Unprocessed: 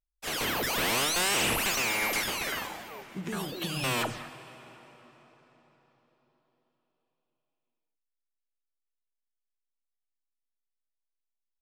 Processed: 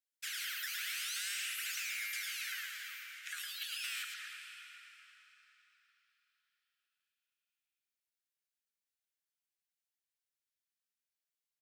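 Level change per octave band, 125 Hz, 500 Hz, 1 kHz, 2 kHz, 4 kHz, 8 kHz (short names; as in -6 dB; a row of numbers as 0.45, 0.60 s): under -40 dB, under -40 dB, -22.0 dB, -9.0 dB, -9.0 dB, -9.5 dB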